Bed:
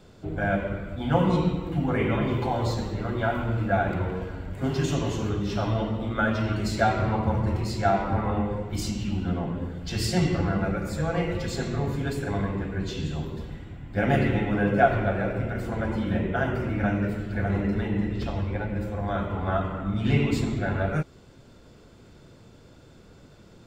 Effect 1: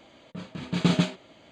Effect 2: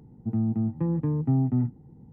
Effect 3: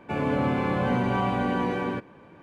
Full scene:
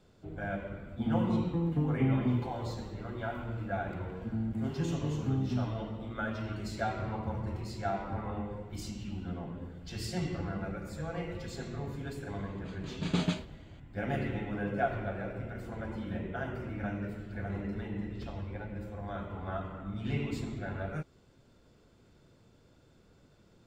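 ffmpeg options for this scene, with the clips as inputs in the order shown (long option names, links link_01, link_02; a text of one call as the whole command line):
ffmpeg -i bed.wav -i cue0.wav -i cue1.wav -filter_complex "[2:a]asplit=2[link_01][link_02];[0:a]volume=-11dB[link_03];[link_01]highpass=120,atrim=end=2.12,asetpts=PTS-STARTPTS,volume=-4dB,afade=type=in:duration=0.004:curve=hsin,afade=type=out:start_time=2.116:duration=0.004:curve=hsin,adelay=730[link_04];[link_02]atrim=end=2.12,asetpts=PTS-STARTPTS,volume=-8.5dB,afade=type=in:duration=0.004:curve=hsin,afade=type=out:start_time=2.116:duration=0.004:curve=hsin,adelay=3990[link_05];[1:a]atrim=end=1.51,asetpts=PTS-STARTPTS,volume=-7.5dB,afade=type=in:duration=0.004:curve=hsin,afade=type=out:start_time=1.506:duration=0.004:curve=hsin,adelay=12290[link_06];[link_03][link_04][link_05][link_06]amix=inputs=4:normalize=0" out.wav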